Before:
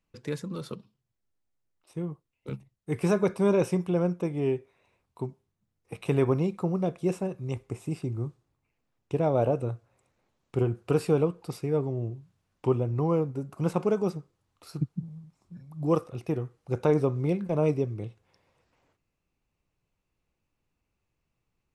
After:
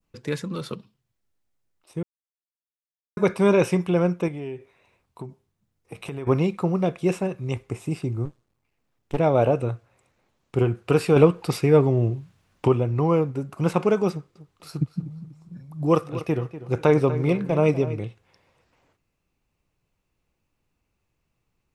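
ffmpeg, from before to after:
-filter_complex "[0:a]asettb=1/sr,asplit=3[s0][s1][s2];[s0]atrim=end=4.284[s3];[s1]atrim=start=4.28:end=6.27,asetpts=PTS-STARTPTS,afade=t=in:d=0.004:c=qsin,afade=t=out:st=1.986:d=0.004:c=qsin,acompressor=threshold=0.0158:ratio=4:attack=3.2:release=140:knee=1:detection=peak[s4];[s2]atrim=start=6.266[s5];[s3][s4]acrossfade=d=0.004:c1=hsin:c2=qsin[s6];[s6][s5]acrossfade=d=0.004:c1=qsin:c2=hsin,asettb=1/sr,asplit=3[s7][s8][s9];[s7]atrim=end=8.254[s10];[s8]atrim=start=8.25:end=9.18,asetpts=PTS-STARTPTS,afade=t=in:d=0.004:c=qsin,afade=t=out:st=0.926:d=0.004:c=qsin,aeval=exprs='max(val(0),0)':c=same[s11];[s9]atrim=start=9.176[s12];[s10][s11]acrossfade=d=0.004:c1=hsin:c2=qsin[s13];[s13][s12]acrossfade=d=0.004:c1=qsin:c2=hsin,asettb=1/sr,asplit=3[s14][s15][s16];[s14]atrim=end=11.164[s17];[s15]atrim=start=11.16:end=12.68,asetpts=PTS-STARTPTS,afade=t=in:d=0.004:c=qsin,afade=t=out:st=1.516:d=0.004:c=qsin,acontrast=45[s18];[s16]atrim=start=12.676[s19];[s17][s18]acrossfade=d=0.004:c1=hsin:c2=qsin[s20];[s20][s19]acrossfade=d=0.004:c1=qsin:c2=hsin,asettb=1/sr,asplit=3[s21][s22][s23];[s21]atrim=end=14.114[s24];[s22]atrim=start=14.11:end=18,asetpts=PTS-STARTPTS,afade=t=in:d=0.004:c=qsin,afade=t=out:st=3.886:d=0.004:c=qsin,asplit=2[s25][s26];[s26]adelay=244,lowpass=f=4000:p=1,volume=0.211,asplit=2[s27][s28];[s28]adelay=244,lowpass=f=4000:p=1,volume=0.34,asplit=2[s29][s30];[s30]adelay=244,lowpass=f=4000:p=1,volume=0.34[s31];[s25][s27][s29][s31]amix=inputs=4:normalize=0,atrim=end_sample=171549[s32];[s23]atrim=start=17.996[s33];[s24][s32]acrossfade=d=0.004:c1=hsin:c2=qsin[s34];[s34][s33]acrossfade=d=0.004:c1=qsin:c2=hsin,asplit=3[s35][s36][s37];[s35]atrim=end=2.03,asetpts=PTS-STARTPTS,afade=t=out:st=2.026:d=0.004:c=hsin[s38];[s36]atrim=start=2.03:end=3.17,asetpts=PTS-STARTPTS,volume=0[s39];[s37]atrim=start=3.17,asetpts=PTS-STARTPTS,afade=t=in:d=0.004:c=hsin[s40];[s38][s39][s40]concat=n=3:v=0:a=1,adynamicequalizer=threshold=0.00447:dfrequency=2300:dqfactor=0.73:tfrequency=2300:tqfactor=0.73:attack=5:release=100:ratio=0.375:range=3.5:mode=boostabove:tftype=bell,volume=1.68"

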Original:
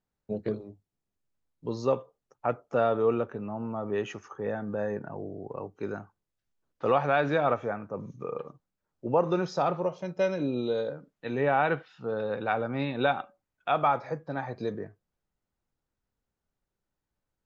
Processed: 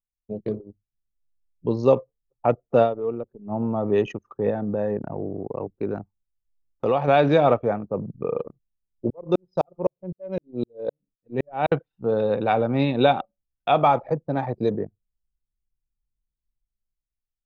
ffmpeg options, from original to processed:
-filter_complex "[0:a]asettb=1/sr,asplit=3[s0][s1][s2];[s0]atrim=end=4.504[s3];[s1]atrim=start=4.5:end=7.08,asetpts=PTS-STARTPTS,afade=t=in:d=0.004:c=qsin,afade=t=out:st=2.576:d=0.004:c=qsin,acompressor=threshold=0.02:ratio=1.5:attack=3.2:release=140:knee=1:detection=peak[s4];[s2]atrim=start=7.076[s5];[s3][s4]acrossfade=d=0.004:c1=hsin:c2=qsin[s6];[s6][s5]acrossfade=d=0.004:c1=qsin:c2=hsin,asettb=1/sr,asplit=3[s7][s8][s9];[s7]atrim=end=9.104[s10];[s8]atrim=start=9.1:end=11.72,asetpts=PTS-STARTPTS,afade=t=in:d=0.004:c=qsin,afade=t=out:st=2.616:d=0.004:c=qsin,aeval=exprs='val(0)*pow(10,-34*if(lt(mod(-3.9*n/s,1),2*abs(-3.9)/1000),1-mod(-3.9*n/s,1)/(2*abs(-3.9)/1000),(mod(-3.9*n/s,1)-2*abs(-3.9)/1000)/(1-2*abs(-3.9)/1000))/20)':c=same[s11];[s9]atrim=start=11.716[s12];[s10][s11]acrossfade=d=0.004:c1=hsin:c2=qsin[s13];[s13][s12]acrossfade=d=0.004:c1=qsin:c2=hsin,asplit=3[s14][s15][s16];[s14]atrim=end=2.94,asetpts=PTS-STARTPTS,afade=t=out:st=2.82:d=0.12:c=qua:silence=0.281838[s17];[s15]atrim=start=2.94:end=3.41,asetpts=PTS-STARTPTS,volume=0.282[s18];[s16]atrim=start=3.41,asetpts=PTS-STARTPTS,afade=t=in:d=0.12:c=qua:silence=0.281838[s19];[s17][s18][s19]concat=n=3:v=0:a=1,anlmdn=1,equalizer=f=1500:t=o:w=1:g=-10,dynaudnorm=f=120:g=11:m=3.16"

